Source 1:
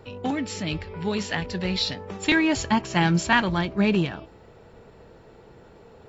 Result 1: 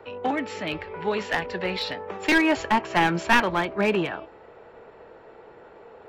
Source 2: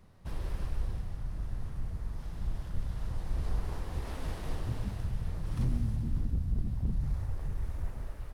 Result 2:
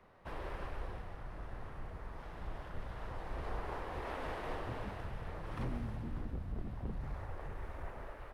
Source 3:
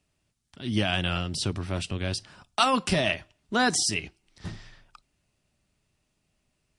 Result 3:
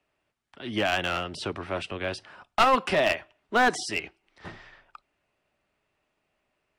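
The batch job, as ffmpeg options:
ffmpeg -i in.wav -filter_complex "[0:a]acrossover=split=350 2800:gain=0.158 1 0.141[link_01][link_02][link_03];[link_01][link_02][link_03]amix=inputs=3:normalize=0,acrossover=split=540[link_04][link_05];[link_05]aeval=exprs='clip(val(0),-1,0.0422)':channel_layout=same[link_06];[link_04][link_06]amix=inputs=2:normalize=0,volume=5.5dB" out.wav

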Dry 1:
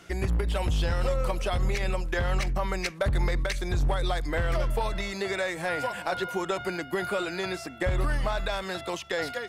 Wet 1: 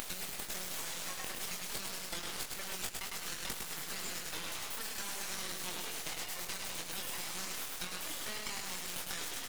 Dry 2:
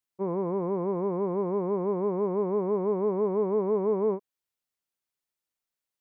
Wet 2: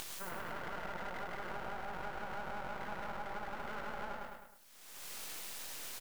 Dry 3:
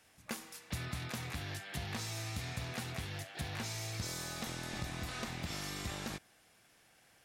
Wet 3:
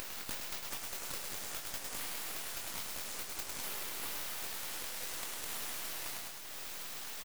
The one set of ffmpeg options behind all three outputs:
ffmpeg -i in.wav -filter_complex "[0:a]acompressor=mode=upward:threshold=-41dB:ratio=2.5,aderivative,asplit=2[link_01][link_02];[link_02]adelay=22,volume=-4dB[link_03];[link_01][link_03]amix=inputs=2:normalize=0,aecho=1:1:104|208|312|416|520|624:0.631|0.29|0.134|0.0614|0.0283|0.013,aeval=exprs='abs(val(0))':channel_layout=same,acompressor=threshold=-49dB:ratio=6,lowshelf=frequency=180:gain=-7,volume=15dB" out.wav

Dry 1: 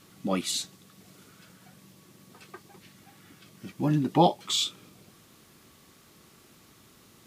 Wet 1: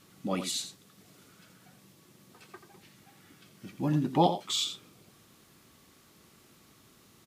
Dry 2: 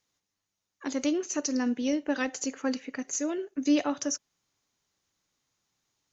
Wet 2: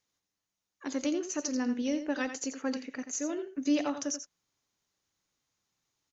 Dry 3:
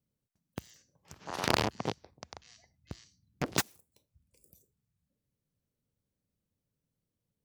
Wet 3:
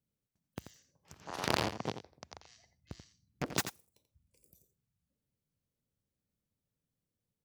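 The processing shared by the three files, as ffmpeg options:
ffmpeg -i in.wav -af "aecho=1:1:86:0.316,volume=-3.5dB" out.wav

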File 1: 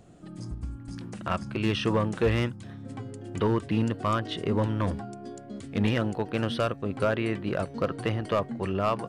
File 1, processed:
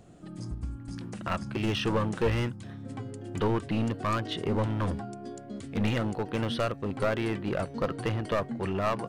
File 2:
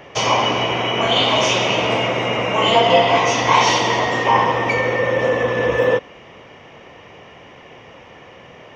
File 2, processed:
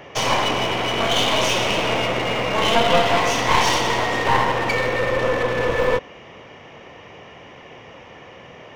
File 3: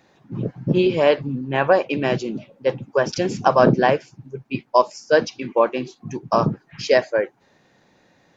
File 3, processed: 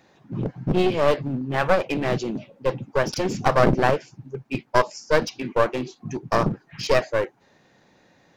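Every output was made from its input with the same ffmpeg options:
ffmpeg -i in.wav -af "aeval=exprs='clip(val(0),-1,0.0596)':channel_layout=same" out.wav

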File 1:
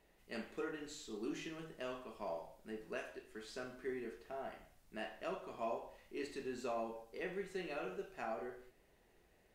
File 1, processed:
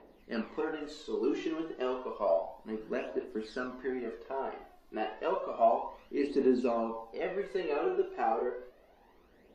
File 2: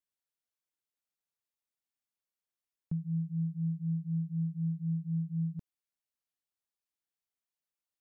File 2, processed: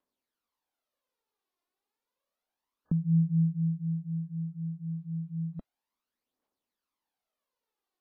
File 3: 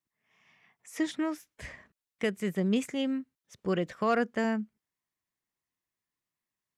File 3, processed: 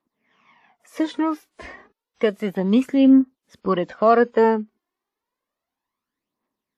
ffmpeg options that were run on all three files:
ffmpeg -i in.wav -af "equalizer=frequency=125:width_type=o:width=1:gain=-7,equalizer=frequency=250:width_type=o:width=1:gain=12,equalizer=frequency=500:width_type=o:width=1:gain=8,equalizer=frequency=1000:width_type=o:width=1:gain=10,equalizer=frequency=4000:width_type=o:width=1:gain=4,equalizer=frequency=8000:width_type=o:width=1:gain=-8,aphaser=in_gain=1:out_gain=1:delay=2.9:decay=0.59:speed=0.31:type=triangular" -ar 32000 -c:a wmav2 -b:a 64k out.wma

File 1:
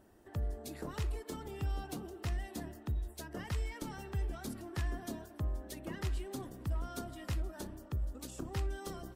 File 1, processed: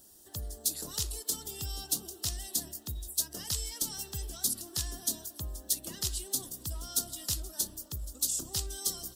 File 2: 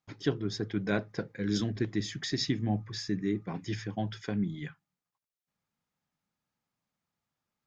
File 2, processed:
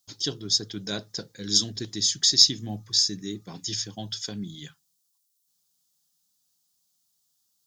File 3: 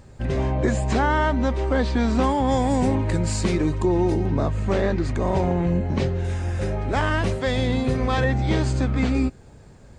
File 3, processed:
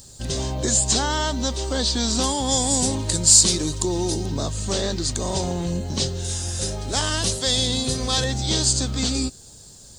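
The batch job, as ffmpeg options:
ffmpeg -i in.wav -af "aexciter=amount=11.8:drive=6.1:freq=3400,volume=-4dB" out.wav

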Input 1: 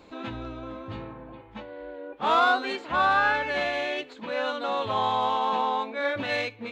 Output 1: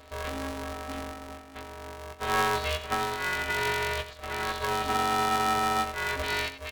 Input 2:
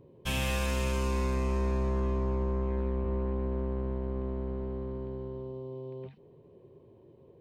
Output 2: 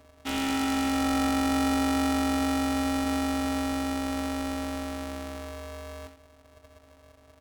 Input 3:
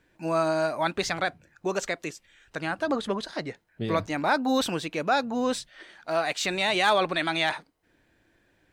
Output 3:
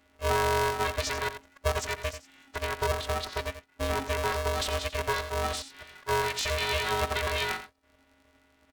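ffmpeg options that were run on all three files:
ffmpeg -i in.wav -af "highshelf=frequency=7900:gain=-7,alimiter=limit=-20.5dB:level=0:latency=1:release=16,afftfilt=real='hypot(re,im)*cos(PI*b)':imag='0':win_size=512:overlap=0.75,aecho=1:1:89:0.266,aeval=exprs='val(0)*sgn(sin(2*PI*270*n/s))':channel_layout=same,volume=4.5dB" out.wav

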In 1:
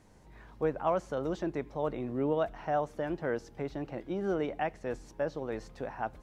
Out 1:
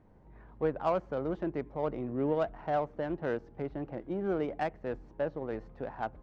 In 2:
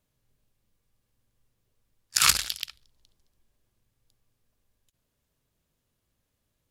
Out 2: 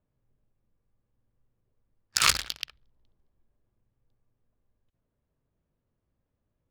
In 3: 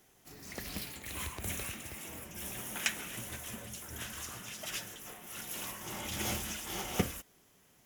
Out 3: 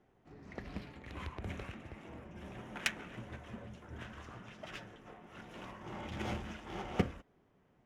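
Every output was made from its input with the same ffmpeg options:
ffmpeg -i in.wav -af "adynamicsmooth=sensitivity=3:basefreq=1500" out.wav

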